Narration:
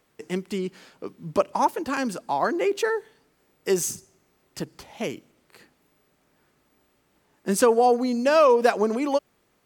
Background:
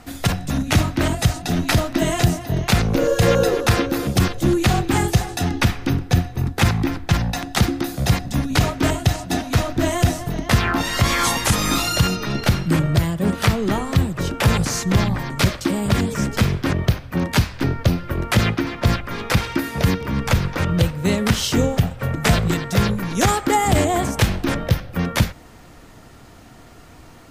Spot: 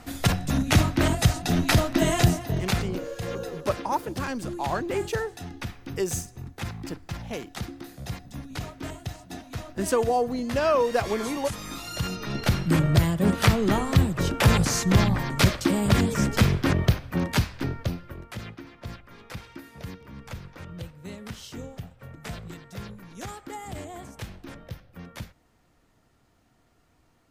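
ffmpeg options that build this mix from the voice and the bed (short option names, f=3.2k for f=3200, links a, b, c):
-filter_complex "[0:a]adelay=2300,volume=-5dB[a];[1:a]volume=12.5dB,afade=t=out:st=2.27:d=0.77:silence=0.188365,afade=t=in:st=11.82:d=1.13:silence=0.177828,afade=t=out:st=16.74:d=1.54:silence=0.11885[b];[a][b]amix=inputs=2:normalize=0"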